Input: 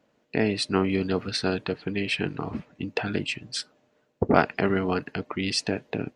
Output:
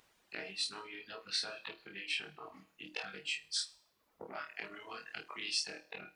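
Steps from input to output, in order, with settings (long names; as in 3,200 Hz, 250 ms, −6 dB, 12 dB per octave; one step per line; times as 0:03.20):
every overlapping window played backwards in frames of 40 ms
downward compressor 8 to 1, threshold −30 dBFS, peak gain reduction 13.5 dB
mains-hum notches 60/120/180/240/300 Hz
flutter between parallel walls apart 4.5 metres, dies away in 0.48 s
background noise brown −49 dBFS
low-pass filter 2,400 Hz 6 dB per octave
on a send at −19 dB: flat-topped bell 680 Hz +8.5 dB 1.2 octaves + convolution reverb RT60 0.80 s, pre-delay 81 ms
on the sum: reverb reduction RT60 1.4 s
first difference
highs frequency-modulated by the lows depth 0.11 ms
level +9.5 dB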